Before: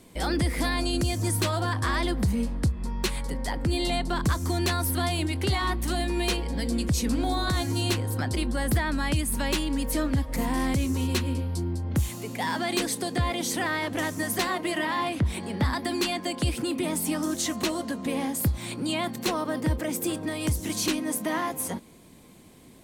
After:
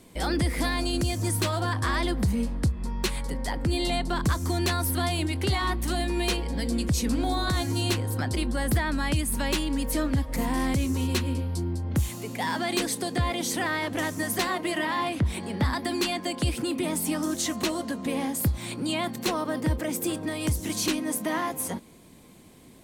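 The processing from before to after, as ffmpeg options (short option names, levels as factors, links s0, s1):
-filter_complex "[0:a]asettb=1/sr,asplit=3[s0][s1][s2];[s0]atrim=end=0.684[s3];[s1]atrim=start=0.68:end=1.62,asetpts=PTS-STARTPTS,afade=t=in:d=0.004:c=qsin,afade=t=out:st=0.936:d=0.004:c=qsin,aeval=exprs='sgn(val(0))*max(abs(val(0))-0.00376,0)':c=same[s4];[s2]atrim=start=1.616[s5];[s3][s4]acrossfade=d=0.004:c1=hsin:c2=qsin[s6];[s6][s5]acrossfade=d=0.004:c1=qsin:c2=hsin"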